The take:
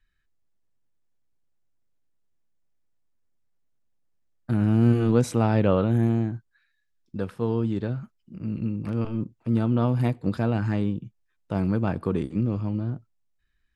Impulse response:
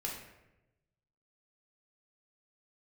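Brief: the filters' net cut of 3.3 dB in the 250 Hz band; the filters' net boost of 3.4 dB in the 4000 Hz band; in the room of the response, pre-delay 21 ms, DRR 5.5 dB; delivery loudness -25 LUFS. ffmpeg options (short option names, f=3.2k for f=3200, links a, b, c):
-filter_complex "[0:a]equalizer=f=250:t=o:g=-4,equalizer=f=4k:t=o:g=4.5,asplit=2[a][b];[1:a]atrim=start_sample=2205,adelay=21[c];[b][c]afir=irnorm=-1:irlink=0,volume=-7dB[d];[a][d]amix=inputs=2:normalize=0,volume=1dB"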